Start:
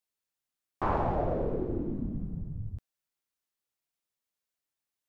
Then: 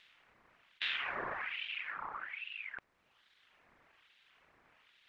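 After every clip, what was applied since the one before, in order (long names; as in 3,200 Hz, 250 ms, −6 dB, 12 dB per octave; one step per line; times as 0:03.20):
compressor on every frequency bin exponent 0.4
reverb reduction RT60 1.3 s
ring modulator whose carrier an LFO sweeps 1,900 Hz, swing 45%, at 1.2 Hz
level −8 dB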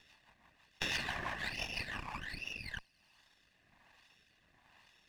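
lower of the sound and its delayed copy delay 1.1 ms
delay with a high-pass on its return 96 ms, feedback 78%, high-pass 4,000 Hz, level −20 dB
rotating-speaker cabinet horn 6 Hz, later 1.2 Hz, at 0:02.21
level +4.5 dB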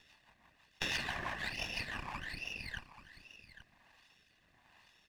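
single-tap delay 833 ms −13.5 dB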